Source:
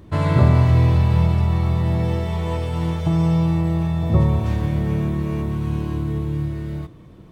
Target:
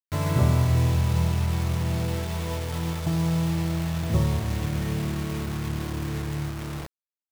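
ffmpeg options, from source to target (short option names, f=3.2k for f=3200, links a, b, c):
-af "acrusher=bits=4:mix=0:aa=0.000001,volume=-6.5dB"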